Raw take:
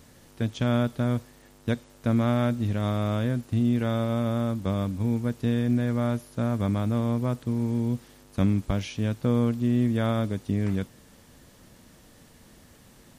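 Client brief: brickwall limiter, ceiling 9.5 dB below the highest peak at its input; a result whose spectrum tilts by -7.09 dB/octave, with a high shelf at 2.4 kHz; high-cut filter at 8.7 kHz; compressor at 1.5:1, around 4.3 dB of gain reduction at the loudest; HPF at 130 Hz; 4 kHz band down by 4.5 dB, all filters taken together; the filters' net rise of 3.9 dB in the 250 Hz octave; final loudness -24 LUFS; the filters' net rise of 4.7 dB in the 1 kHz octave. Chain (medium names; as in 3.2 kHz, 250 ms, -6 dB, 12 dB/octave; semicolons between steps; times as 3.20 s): high-pass 130 Hz; low-pass 8.7 kHz; peaking EQ 250 Hz +4.5 dB; peaking EQ 1 kHz +6 dB; treble shelf 2.4 kHz +3.5 dB; peaking EQ 4 kHz -9 dB; compression 1.5:1, threshold -28 dBFS; trim +8.5 dB; peak limiter -13.5 dBFS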